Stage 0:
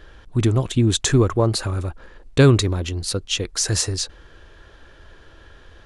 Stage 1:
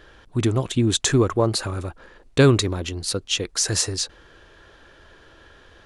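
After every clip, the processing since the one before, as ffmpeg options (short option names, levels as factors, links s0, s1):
-af "lowshelf=f=97:g=-10"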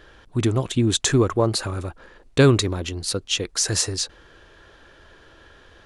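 -af anull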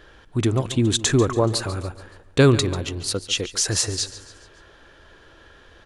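-af "aecho=1:1:142|284|426|568:0.168|0.0806|0.0387|0.0186"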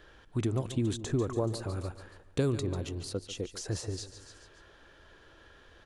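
-filter_complex "[0:a]acrossover=split=820|6300[s0][s1][s2];[s0]acompressor=threshold=0.112:ratio=4[s3];[s1]acompressor=threshold=0.0112:ratio=4[s4];[s2]acompressor=threshold=0.00794:ratio=4[s5];[s3][s4][s5]amix=inputs=3:normalize=0,volume=0.447"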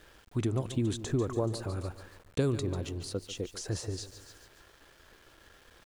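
-af "aeval=exprs='val(0)*gte(abs(val(0)),0.00178)':c=same"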